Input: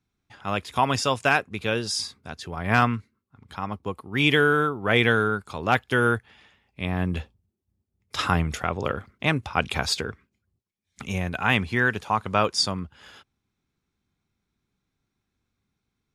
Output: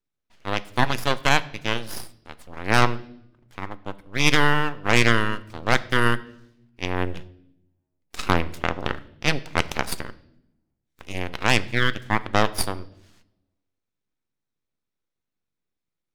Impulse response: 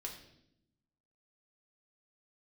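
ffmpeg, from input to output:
-filter_complex "[0:a]aeval=exprs='0.668*(cos(1*acos(clip(val(0)/0.668,-1,1)))-cos(1*PI/2))+0.0596*(cos(6*acos(clip(val(0)/0.668,-1,1)))-cos(6*PI/2))+0.0668*(cos(7*acos(clip(val(0)/0.668,-1,1)))-cos(7*PI/2))':c=same,aeval=exprs='abs(val(0))':c=same,asplit=2[a][b];[1:a]atrim=start_sample=2205[c];[b][c]afir=irnorm=-1:irlink=0,volume=-7dB[d];[a][d]amix=inputs=2:normalize=0"

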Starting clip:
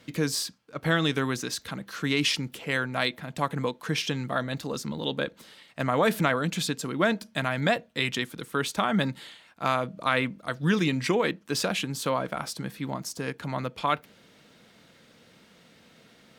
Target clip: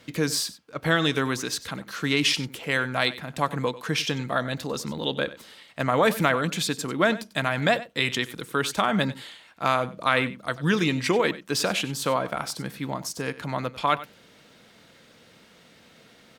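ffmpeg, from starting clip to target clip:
-filter_complex "[0:a]equalizer=f=190:t=o:w=1.3:g=-3,asplit=2[a][b];[b]aecho=0:1:95:0.15[c];[a][c]amix=inputs=2:normalize=0,volume=3dB"

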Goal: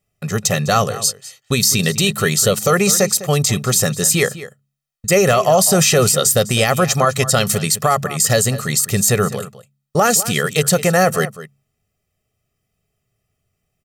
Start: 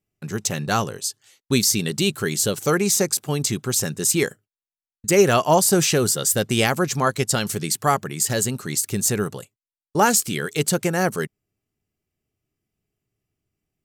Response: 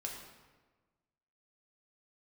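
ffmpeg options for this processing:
-filter_complex "[0:a]lowshelf=f=130:g=-3.5,aecho=1:1:1.6:0.71,bandreject=f=69.4:t=h:w=4,bandreject=f=138.8:t=h:w=4,bandreject=f=208.2:t=h:w=4,alimiter=limit=-12.5dB:level=0:latency=1:release=39,asplit=2[a][b];[b]adelay=204.1,volume=-15dB,highshelf=f=4k:g=-4.59[c];[a][c]amix=inputs=2:normalize=0,volume=8dB"

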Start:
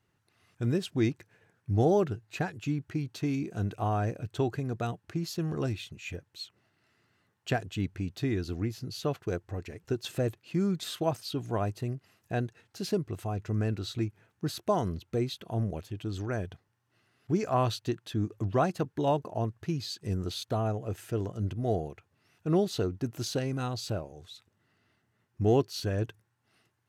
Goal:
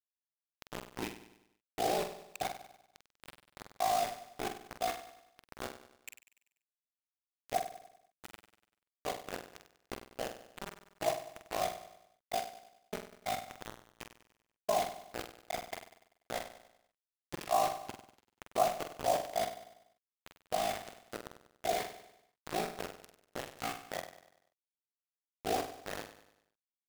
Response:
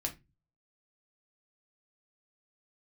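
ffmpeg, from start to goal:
-filter_complex "[0:a]equalizer=f=210:t=o:w=1.5:g=9.5,bandreject=f=60:t=h:w=6,bandreject=f=120:t=h:w=6,bandreject=f=180:t=h:w=6,bandreject=f=240:t=h:w=6,bandreject=f=300:t=h:w=6,bandreject=f=360:t=h:w=6,bandreject=f=420:t=h:w=6,bandreject=f=480:t=h:w=6,bandreject=f=540:t=h:w=6,asplit=2[a][b];[b]acompressor=threshold=-37dB:ratio=4,volume=0.5dB[c];[a][c]amix=inputs=2:normalize=0,asplit=3[d][e][f];[d]bandpass=f=730:t=q:w=8,volume=0dB[g];[e]bandpass=f=1.09k:t=q:w=8,volume=-6dB[h];[f]bandpass=f=2.44k:t=q:w=8,volume=-9dB[i];[g][h][i]amix=inputs=3:normalize=0,acrusher=bits=5:mix=0:aa=0.000001,aeval=exprs='val(0)*sin(2*PI*27*n/s)':c=same,asplit=2[j][k];[k]adelay=46,volume=-7dB[l];[j][l]amix=inputs=2:normalize=0,aecho=1:1:97|194|291|388|485:0.237|0.111|0.0524|0.0246|0.0116,volume=2.5dB"

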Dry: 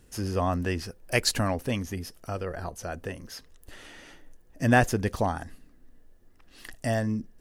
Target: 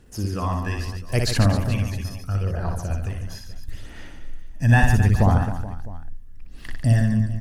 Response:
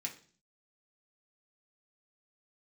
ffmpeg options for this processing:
-af "asubboost=boost=4:cutoff=190,aphaser=in_gain=1:out_gain=1:delay=1.2:decay=0.57:speed=0.75:type=sinusoidal,aecho=1:1:60|144|261.6|426.2|656.7:0.631|0.398|0.251|0.158|0.1,volume=-2.5dB"

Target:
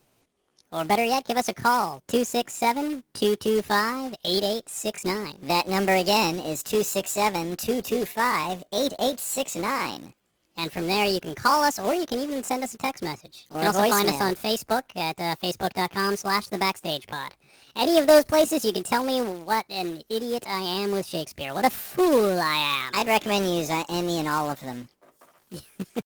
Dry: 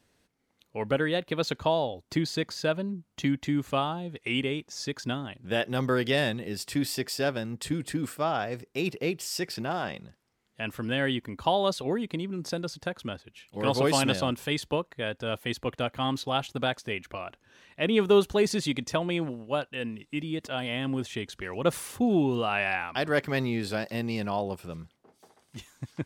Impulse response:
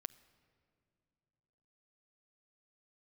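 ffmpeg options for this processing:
-af "asetrate=66075,aresample=44100,atempo=0.66742,acrusher=bits=3:mode=log:mix=0:aa=0.000001,volume=4.5dB" -ar 48000 -c:a libopus -b:a 24k

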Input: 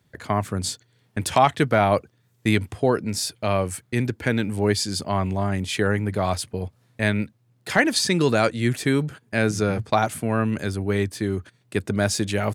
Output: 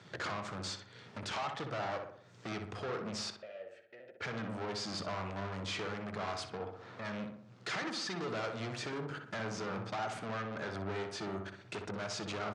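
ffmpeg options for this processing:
-filter_complex "[0:a]asettb=1/sr,asplit=3[a][b][c];[a]atrim=end=10.194[d];[b]atrim=start=10.19:end=10.75,asetpts=PTS-STARTPTS,afade=t=in:d=0.004:c=qsin,afade=t=out:st=0.556:d=0.004:c=qsin,bass=f=250:g=-6,treble=f=4k:g=-14[e];[c]atrim=start=10.746[f];[d][e]acrossfade=d=0.004:c1=hsin:c2=qsin[g];[g][f]acrossfade=d=0.004:c1=qsin:c2=hsin,acompressor=threshold=-40dB:ratio=6,aeval=exprs='(tanh(316*val(0)+0.5)-tanh(0.5))/316':c=same,asettb=1/sr,asplit=3[h][i][j];[h]atrim=end=3.304[k];[i]atrim=start=3.3:end=4.21,asetpts=PTS-STARTPTS,afade=t=in:d=0.004:c=qsin,afade=t=out:st=0.906:d=0.004:c=qsin,asplit=3[l][m][n];[l]bandpass=f=530:t=q:w=8,volume=0dB[o];[m]bandpass=f=1.84k:t=q:w=8,volume=-6dB[p];[n]bandpass=f=2.48k:t=q:w=8,volume=-9dB[q];[o][p][q]amix=inputs=3:normalize=0[r];[j]atrim=start=4.206[s];[k][r]acrossfade=d=0.004:c1=hsin:c2=qsin[t];[t][s]acrossfade=d=0.004:c1=qsin:c2=hsin,asplit=3[u][v][w];[u]afade=t=out:st=6.57:d=0.02[x];[v]asplit=2[y][z];[z]highpass=f=720:p=1,volume=17dB,asoftclip=type=tanh:threshold=-46.5dB[aa];[y][aa]amix=inputs=2:normalize=0,lowpass=f=1.1k:p=1,volume=-6dB,afade=t=in:st=6.57:d=0.02,afade=t=out:st=7.04:d=0.02[ab];[w]afade=t=in:st=7.04:d=0.02[ac];[x][ab][ac]amix=inputs=3:normalize=0,highpass=f=120:w=0.5412,highpass=f=120:w=1.3066,equalizer=f=150:t=q:w=4:g=-6,equalizer=f=260:t=q:w=4:g=-7,equalizer=f=1.3k:t=q:w=4:g=6,lowpass=f=6.3k:w=0.5412,lowpass=f=6.3k:w=1.3066,asplit=2[ad][ae];[ae]adelay=62,lowpass=f=1.9k:p=1,volume=-4.5dB,asplit=2[af][ag];[ag]adelay=62,lowpass=f=1.9k:p=1,volume=0.54,asplit=2[ah][ai];[ai]adelay=62,lowpass=f=1.9k:p=1,volume=0.54,asplit=2[aj][ak];[ak]adelay=62,lowpass=f=1.9k:p=1,volume=0.54,asplit=2[al][am];[am]adelay=62,lowpass=f=1.9k:p=1,volume=0.54,asplit=2[an][ao];[ao]adelay=62,lowpass=f=1.9k:p=1,volume=0.54,asplit=2[ap][aq];[aq]adelay=62,lowpass=f=1.9k:p=1,volume=0.54[ar];[ad][af][ah][aj][al][an][ap][ar]amix=inputs=8:normalize=0,volume=14dB"

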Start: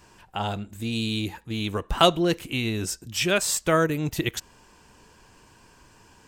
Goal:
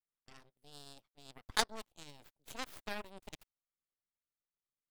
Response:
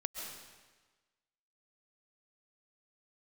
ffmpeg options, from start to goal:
-af "asetrate=56448,aresample=44100,aeval=exprs='0.75*(cos(1*acos(clip(val(0)/0.75,-1,1)))-cos(1*PI/2))+0.237*(cos(3*acos(clip(val(0)/0.75,-1,1)))-cos(3*PI/2))+0.0376*(cos(4*acos(clip(val(0)/0.75,-1,1)))-cos(4*PI/2))+0.00596*(cos(7*acos(clip(val(0)/0.75,-1,1)))-cos(7*PI/2))+0.0075*(cos(8*acos(clip(val(0)/0.75,-1,1)))-cos(8*PI/2))':c=same,volume=-5dB"

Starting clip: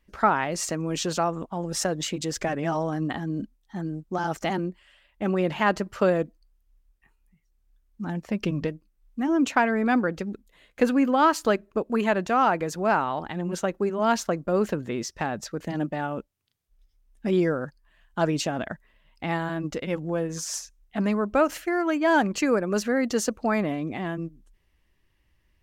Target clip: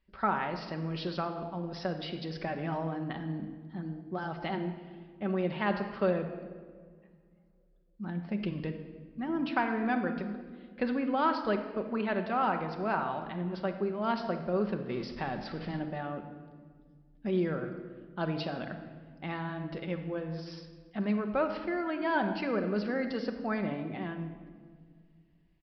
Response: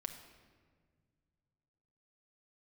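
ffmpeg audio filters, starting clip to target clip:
-filter_complex "[0:a]asettb=1/sr,asplit=3[a][b][c];[a]atrim=end=14.894[d];[b]atrim=start=14.89:end=15.79,asetpts=PTS-STARTPTS,afade=t=in:d=0.004:c=qsin,afade=t=out:st=0.896:d=0.004:c=qsin,aeval=exprs='val(0)+0.5*0.0188*sgn(val(0))':c=same[e];[c]atrim=start=15.786[f];[d][e]acrossfade=d=0.004:c1=hsin:c2=qsin[g];[g][f]acrossfade=d=0.004:c1=qsin:c2=hsin[h];[1:a]atrim=start_sample=2205[i];[h][i]afir=irnorm=-1:irlink=0,aresample=11025,aresample=44100,volume=-5.5dB"

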